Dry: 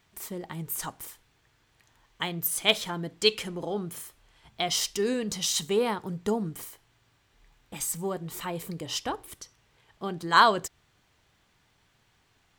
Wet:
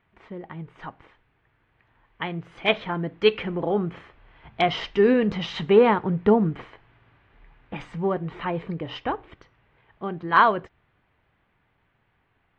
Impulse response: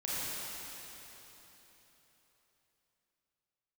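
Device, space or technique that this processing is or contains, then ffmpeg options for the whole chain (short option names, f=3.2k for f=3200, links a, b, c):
action camera in a waterproof case: -af "lowpass=f=2.5k:w=0.5412,lowpass=f=2.5k:w=1.3066,dynaudnorm=f=360:g=17:m=13dB" -ar 48000 -c:a aac -b:a 48k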